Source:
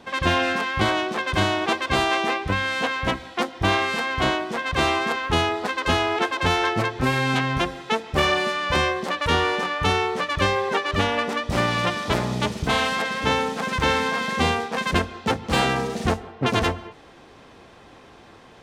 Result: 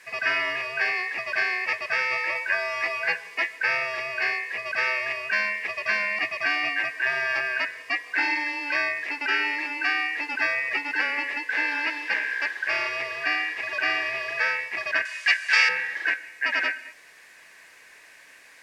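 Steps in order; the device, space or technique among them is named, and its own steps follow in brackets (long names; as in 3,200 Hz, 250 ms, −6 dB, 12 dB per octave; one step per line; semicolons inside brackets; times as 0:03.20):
split-band scrambled radio (band-splitting scrambler in four parts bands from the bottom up 2143; band-pass filter 330–3,200 Hz; white noise bed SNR 27 dB)
low-shelf EQ 260 Hz −9 dB
0:02.34–0:03.56: double-tracking delay 12 ms −3 dB
low-pass filter 8,700 Hz 12 dB per octave
0:15.05–0:15.69: meter weighting curve ITU-R 468
level −2.5 dB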